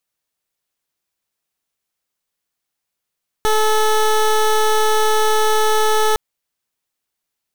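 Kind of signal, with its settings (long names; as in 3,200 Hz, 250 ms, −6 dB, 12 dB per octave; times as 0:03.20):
pulse wave 432 Hz, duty 18% −14.5 dBFS 2.71 s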